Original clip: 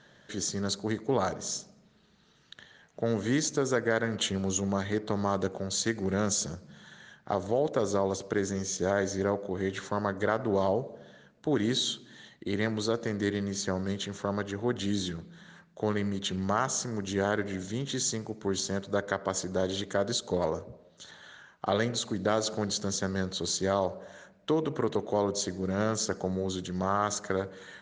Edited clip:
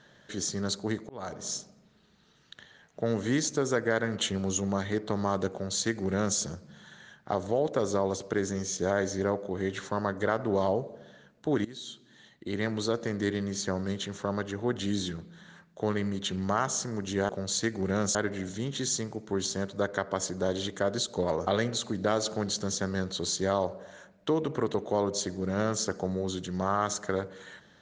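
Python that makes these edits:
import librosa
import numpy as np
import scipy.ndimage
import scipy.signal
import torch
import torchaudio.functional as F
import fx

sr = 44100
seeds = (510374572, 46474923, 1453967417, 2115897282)

y = fx.edit(x, sr, fx.fade_in_span(start_s=1.09, length_s=0.41),
    fx.duplicate(start_s=5.52, length_s=0.86, to_s=17.29),
    fx.fade_in_from(start_s=11.65, length_s=1.14, floor_db=-20.0),
    fx.cut(start_s=20.61, length_s=1.07), tone=tone)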